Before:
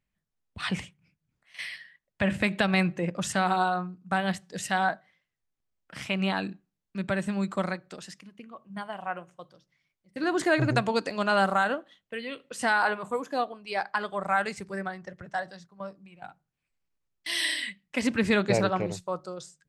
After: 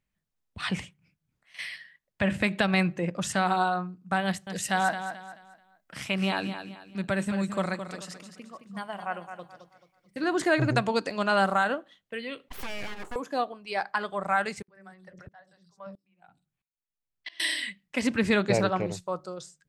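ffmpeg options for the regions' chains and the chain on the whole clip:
ffmpeg -i in.wav -filter_complex "[0:a]asettb=1/sr,asplit=3[link_01][link_02][link_03];[link_01]atrim=end=4.254[link_04];[link_02]atrim=start=4.25:end=10.2,asetpts=PTS-STARTPTS,afade=type=in:duration=0.004:curve=qsin,afade=type=out:start_time=5.946:duration=0.004:curve=qsin,highshelf=frequency=7700:gain=6.5,aecho=1:1:217|434|651|868:0.335|0.114|0.0387|0.0132,atrim=end_sample=262395[link_05];[link_03]atrim=start=10.196[link_06];[link_04][link_05]acrossfade=duration=0.004:curve1=hsin:curve2=qsin[link_07];[link_07][link_06]acrossfade=duration=0.004:curve1=qsin:curve2=hsin,asettb=1/sr,asplit=3[link_08][link_09][link_10];[link_08]atrim=end=12.484[link_11];[link_09]atrim=start=12.48:end=13.16,asetpts=PTS-STARTPTS,afade=type=in:duration=0.004:curve=qsin,afade=type=out:start_time=0.676:duration=0.004:curve=qsin,acompressor=threshold=-30dB:ratio=5:attack=3.2:release=140:knee=1:detection=peak,aeval=exprs='abs(val(0))':channel_layout=same[link_12];[link_10]atrim=start=13.156[link_13];[link_11][link_12]acrossfade=duration=0.004:curve1=hsin:curve2=qsin[link_14];[link_14][link_13]acrossfade=duration=0.004:curve1=qsin:curve2=hsin,asettb=1/sr,asplit=3[link_15][link_16][link_17];[link_15]atrim=end=14.624[link_18];[link_16]atrim=start=14.62:end=17.4,asetpts=PTS-STARTPTS,afade=type=in:duration=0.004:curve=qsin,afade=type=out:start_time=2.776:duration=0.004:curve=qsin,acrossover=split=400|4800[link_19][link_20][link_21];[link_19]adelay=60[link_22];[link_21]adelay=130[link_23];[link_22][link_20][link_23]amix=inputs=3:normalize=0,atrim=end_sample=122598,aeval=exprs='val(0)*pow(10,-25*if(lt(mod(-1.5*n/s,1),2*abs(-1.5)/1000),1-mod(-1.5*n/s,1)/(2*abs(-1.5)/1000),(mod(-1.5*n/s,1)-2*abs(-1.5)/1000)/(1-2*abs(-1.5)/1000))/20)':channel_layout=same[link_24];[link_17]atrim=start=17.396[link_25];[link_18][link_24]acrossfade=duration=0.004:curve1=hsin:curve2=qsin[link_26];[link_26][link_25]acrossfade=duration=0.004:curve1=qsin:curve2=hsin" out.wav

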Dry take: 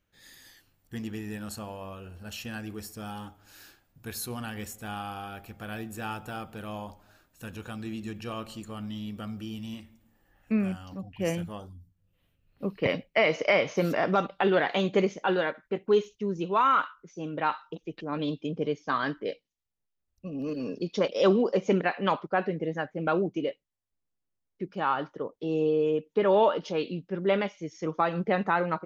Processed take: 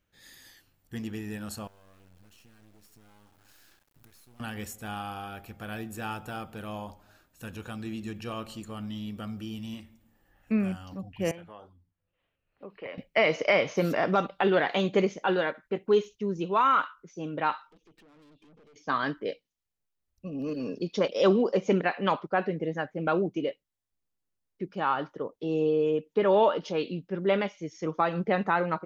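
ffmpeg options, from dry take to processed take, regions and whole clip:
ffmpeg -i in.wav -filter_complex "[0:a]asettb=1/sr,asplit=3[link_01][link_02][link_03];[link_01]atrim=end=1.674[link_04];[link_02]atrim=start=1.67:end=4.4,asetpts=PTS-STARTPTS,afade=type=in:duration=0.004:curve=qsin,afade=type=out:start_time=2.726:duration=0.004:curve=qsin,acompressor=threshold=-51dB:ratio=12:attack=3.2:release=140:knee=1:detection=peak,acrusher=bits=8:dc=4:mix=0:aa=0.000001[link_05];[link_03]atrim=start=4.396[link_06];[link_04][link_05]acrossfade=duration=0.004:curve1=hsin:curve2=qsin[link_07];[link_07][link_06]acrossfade=duration=0.004:curve1=qsin:curve2=hsin,asettb=1/sr,asplit=3[link_08][link_09][link_10];[link_08]atrim=end=11.314[link_11];[link_09]atrim=start=11.31:end=12.98,asetpts=PTS-STARTPTS,afade=type=in:duration=0.004:curve=qsin,afade=type=out:start_time=1.666:duration=0.004:curve=qsin,acrossover=split=380 3200:gain=0.2 1 0.1[link_12][link_13][link_14];[link_12][link_13][link_14]amix=inputs=3:normalize=0,acompressor=threshold=-44dB:ratio=2:attack=3.2:release=140:knee=1:detection=peak[link_15];[link_10]atrim=start=12.976[link_16];[link_11][link_15]acrossfade=duration=0.004:curve1=hsin:curve2=qsin[link_17];[link_17][link_16]acrossfade=duration=0.004:curve1=qsin:curve2=hsin,asettb=1/sr,asplit=3[link_18][link_19][link_20];[link_18]atrim=end=17.674[link_21];[link_19]atrim=start=17.67:end=18.76,asetpts=PTS-STARTPTS,afade=type=in:duration=0.004:curve=qsin,afade=type=out:start_time=1.086:duration=0.004:curve=qsin,equalizer=frequency=83:width_type=o:width=0.71:gain=-12.5,acompressor=threshold=-43dB:ratio=12:attack=3.2:release=140:knee=1:detection=peak,aeval=exprs='(tanh(631*val(0)+0.3)-tanh(0.3))/631':channel_layout=same[link_22];[link_20]atrim=start=18.756[link_23];[link_21][link_22]acrossfade=duration=0.004:curve1=hsin:curve2=qsin[link_24];[link_24][link_23]acrossfade=duration=0.004:curve1=qsin:curve2=hsin" out.wav

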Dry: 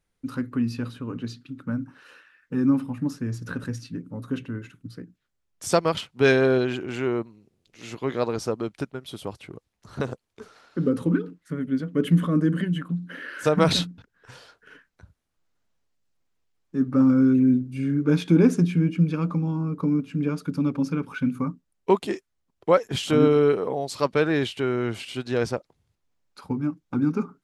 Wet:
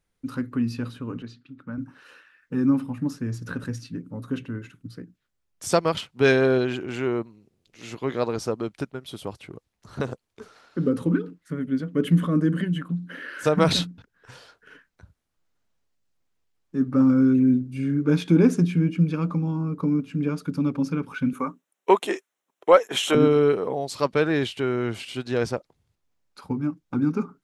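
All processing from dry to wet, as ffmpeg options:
ffmpeg -i in.wav -filter_complex "[0:a]asettb=1/sr,asplit=3[link_01][link_02][link_03];[link_01]atrim=end=1.224[link_04];[link_02]atrim=start=1.22:end=1.78,asetpts=PTS-STARTPTS,afade=type=in:duration=0.004:curve=qsin,afade=type=out:start_time=0.556:duration=0.004:curve=qsin,highpass=frequency=1100:poles=1,aemphasis=mode=reproduction:type=riaa[link_05];[link_03]atrim=start=1.776[link_06];[link_04][link_05]acrossfade=duration=0.004:curve1=hsin:curve2=qsin[link_07];[link_07][link_06]acrossfade=duration=0.004:curve1=qsin:curve2=hsin,asettb=1/sr,asplit=3[link_08][link_09][link_10];[link_08]atrim=end=21.334[link_11];[link_09]atrim=start=21.33:end=23.15,asetpts=PTS-STARTPTS,afade=type=in:duration=0.004:curve=qsin,afade=type=out:start_time=1.816:duration=0.004:curve=qsin,highpass=440,acontrast=55,equalizer=frequency=4700:width_type=o:width=0.25:gain=-13.5[link_12];[link_10]atrim=start=23.146[link_13];[link_11][link_12]acrossfade=duration=0.004:curve1=hsin:curve2=qsin[link_14];[link_14][link_13]acrossfade=duration=0.004:curve1=qsin:curve2=hsin" out.wav

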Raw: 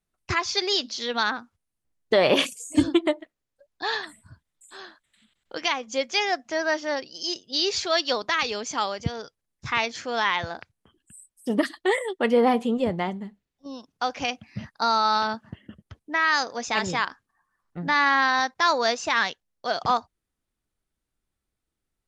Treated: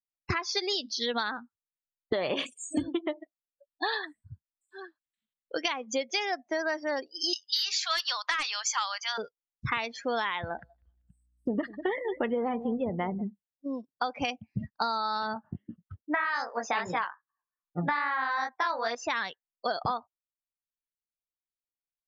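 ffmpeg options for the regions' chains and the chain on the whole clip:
ffmpeg -i in.wav -filter_complex "[0:a]asettb=1/sr,asplit=3[link_01][link_02][link_03];[link_01]atrim=end=7.334[link_04];[link_02]atrim=start=7.33:end=9.18,asetpts=PTS-STARTPTS,afade=type=in:duration=0.004:curve=qsin,afade=type=out:start_time=1.846:duration=0.004:curve=qsin,highpass=frequency=1000:width=0.5412,highpass=frequency=1000:width=1.3066,aeval=exprs='0.316*sin(PI/2*1.78*val(0)/0.316)':channel_layout=same[link_05];[link_03]atrim=start=9.176[link_06];[link_04][link_05]acrossfade=duration=0.004:curve1=hsin:curve2=qsin[link_07];[link_07][link_06]acrossfade=duration=0.004:curve1=qsin:curve2=hsin,asettb=1/sr,asplit=3[link_08][link_09][link_10];[link_08]atrim=end=10.394[link_11];[link_09]atrim=start=10.39:end=13.22,asetpts=PTS-STARTPTS,afade=type=in:duration=0.004:curve=qsin,afade=type=out:start_time=2.826:duration=0.004:curve=qsin,highshelf=frequency=5100:gain=-9,aeval=exprs='val(0)+0.00224*(sin(2*PI*60*n/s)+sin(2*PI*2*60*n/s)/2+sin(2*PI*3*60*n/s)/3+sin(2*PI*4*60*n/s)/4+sin(2*PI*5*60*n/s)/5)':channel_layout=same,aecho=1:1:194|388|582:0.126|0.0453|0.0163,atrim=end_sample=124803[link_12];[link_10]atrim=start=13.216[link_13];[link_11][link_12]acrossfade=duration=0.004:curve1=hsin:curve2=qsin[link_14];[link_14][link_13]acrossfade=duration=0.004:curve1=qsin:curve2=hsin,asettb=1/sr,asplit=3[link_15][link_16][link_17];[link_15]atrim=end=15.344[link_18];[link_16]atrim=start=15.34:end=18.95,asetpts=PTS-STARTPTS,afade=type=in:duration=0.004:curve=qsin,afade=type=out:start_time=3.606:duration=0.004:curve=qsin,equalizer=frequency=1100:width_type=o:width=2.7:gain=10,flanger=delay=16.5:depth=4.9:speed=2.5[link_19];[link_17]atrim=start=18.946[link_20];[link_18][link_19]acrossfade=duration=0.004:curve1=hsin:curve2=qsin[link_21];[link_21][link_20]acrossfade=duration=0.004:curve1=qsin:curve2=hsin,afftdn=noise_reduction=34:noise_floor=-34,acompressor=threshold=-31dB:ratio=12,volume=4.5dB" out.wav

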